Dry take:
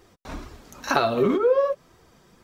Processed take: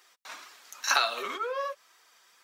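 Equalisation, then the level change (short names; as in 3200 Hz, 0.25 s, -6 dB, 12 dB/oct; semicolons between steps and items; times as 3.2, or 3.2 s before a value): HPF 1400 Hz 12 dB/oct; dynamic EQ 7000 Hz, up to +6 dB, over -49 dBFS, Q 0.81; +2.0 dB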